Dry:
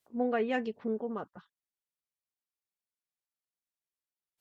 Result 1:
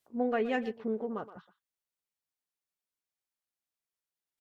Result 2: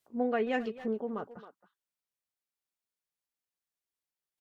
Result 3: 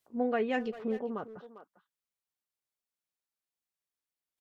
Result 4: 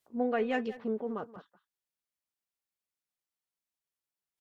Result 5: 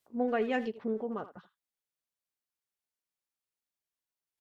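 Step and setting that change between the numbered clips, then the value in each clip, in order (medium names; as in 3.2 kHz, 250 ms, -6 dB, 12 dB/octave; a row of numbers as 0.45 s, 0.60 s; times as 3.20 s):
speakerphone echo, time: 120 ms, 270 ms, 400 ms, 180 ms, 80 ms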